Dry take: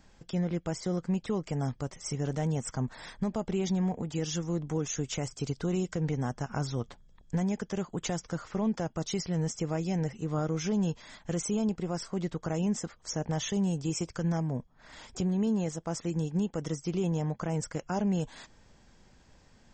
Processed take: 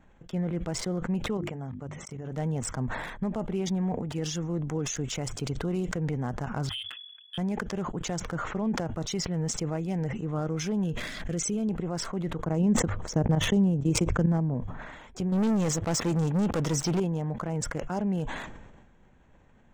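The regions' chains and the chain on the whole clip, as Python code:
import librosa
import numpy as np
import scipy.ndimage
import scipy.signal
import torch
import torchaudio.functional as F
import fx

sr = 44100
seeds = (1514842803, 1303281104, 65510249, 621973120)

y = fx.chain(x, sr, fx.level_steps(step_db=18),
    fx.highpass(hz=59.0, slope=12),
    fx.hum_notches(base_hz=50, count=7), at=(1.37, 2.32))
y = fx.chain(y, sr, fx.high_shelf(hz=2500.0, db=-7.0),
    fx.fixed_phaser(hz=730.0, stages=8),
    fx.freq_invert(carrier_hz=3400), at=(6.69, 7.38))
y = fx.chain(y, sr, fx.peak_eq(hz=910.0, db=-13.0, octaves=0.59),
    fx.pre_swell(db_per_s=50.0), at=(10.84, 11.69))
y = fx.chain(y, sr, fx.tilt_shelf(db=5.0, hz=730.0),
    fx.transient(attack_db=5, sustain_db=-8),
    fx.volume_shaper(bpm=132, per_beat=1, depth_db=-14, release_ms=63.0, shape='fast start'), at=(12.44, 14.54))
y = fx.chain(y, sr, fx.low_shelf(hz=77.0, db=-7.5),
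    fx.leveller(passes=3), at=(15.32, 17.0))
y = fx.wiener(y, sr, points=9)
y = fx.hum_notches(y, sr, base_hz=50, count=2)
y = fx.sustainer(y, sr, db_per_s=41.0)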